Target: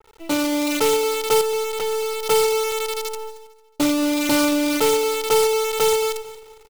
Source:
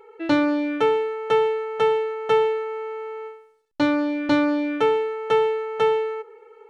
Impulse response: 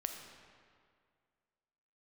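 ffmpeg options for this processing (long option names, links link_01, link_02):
-filter_complex "[0:a]asplit=3[link_01][link_02][link_03];[link_01]afade=type=out:start_time=3.29:duration=0.02[link_04];[link_02]equalizer=frequency=1800:width=0.6:gain=-10,afade=type=in:start_time=3.29:duration=0.02,afade=type=out:start_time=3.98:duration=0.02[link_05];[link_03]afade=type=in:start_time=3.98:duration=0.02[link_06];[link_04][link_05][link_06]amix=inputs=3:normalize=0,dynaudnorm=framelen=110:gausssize=11:maxgain=8.5dB,asplit=2[link_07][link_08];[link_08]aeval=exprs='(mod(2.82*val(0)+1,2)-1)/2.82':channel_layout=same,volume=-9dB[link_09];[link_07][link_09]amix=inputs=2:normalize=0,acrusher=bits=4:dc=4:mix=0:aa=0.000001,asettb=1/sr,asplit=3[link_10][link_11][link_12];[link_10]atrim=end=1.414[link_13];[link_11]atrim=start=1.41:end=2.26,asetpts=PTS-STARTPTS,afade=type=in:duration=0.004:curve=qsin,afade=type=out:start_time=0.846:duration=0.004:curve=qsin,volume=15.5dB,asoftclip=hard,volume=-15.5dB[link_14];[link_12]atrim=start=2.256[link_15];[link_13][link_14]acrossfade=duration=0.004:curve1=hsin:curve2=qsin[link_16];[link_16][link_15]acrossfade=duration=0.004:curve1=qsin:curve2=hsin,asuperstop=centerf=1700:order=4:qfactor=7.4,aecho=1:1:225|450|675:0.133|0.0467|0.0163,adynamicequalizer=threshold=0.0224:dfrequency=2700:dqfactor=0.7:tfrequency=2700:tqfactor=0.7:attack=5:release=100:ratio=0.375:range=2.5:mode=boostabove:tftype=highshelf,volume=-6.5dB"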